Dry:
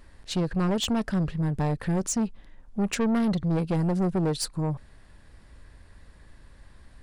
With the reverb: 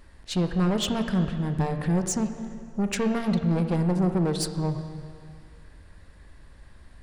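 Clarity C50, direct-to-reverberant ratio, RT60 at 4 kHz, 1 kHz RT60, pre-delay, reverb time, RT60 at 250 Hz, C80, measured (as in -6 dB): 8.0 dB, 6.5 dB, 2.0 s, 2.2 s, 5 ms, 2.2 s, 2.3 s, 9.0 dB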